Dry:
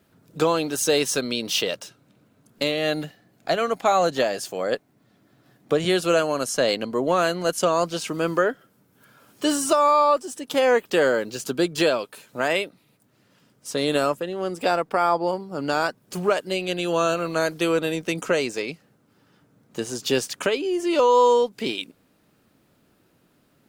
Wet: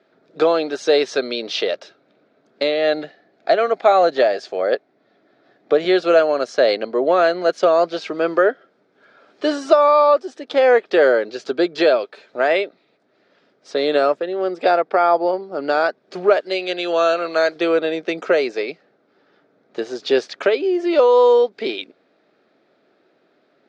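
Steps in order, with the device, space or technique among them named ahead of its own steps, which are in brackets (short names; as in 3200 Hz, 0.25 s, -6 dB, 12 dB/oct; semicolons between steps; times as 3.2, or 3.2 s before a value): phone earpiece (speaker cabinet 380–4200 Hz, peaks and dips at 390 Hz +5 dB, 650 Hz +5 dB, 1000 Hz -7 dB, 2900 Hz -8 dB); 16.4–17.56 tilt +2 dB/oct; gain +5 dB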